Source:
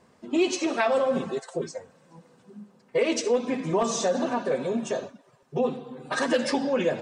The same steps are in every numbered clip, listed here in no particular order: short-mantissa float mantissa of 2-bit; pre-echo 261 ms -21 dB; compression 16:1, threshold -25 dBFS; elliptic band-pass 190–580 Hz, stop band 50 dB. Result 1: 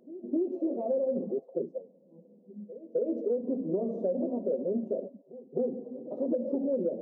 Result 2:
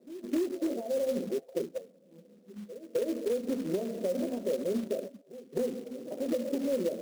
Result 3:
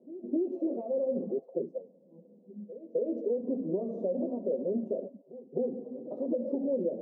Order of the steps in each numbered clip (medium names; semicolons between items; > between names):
short-mantissa float > elliptic band-pass > pre-echo > compression; pre-echo > compression > elliptic band-pass > short-mantissa float; pre-echo > compression > short-mantissa float > elliptic band-pass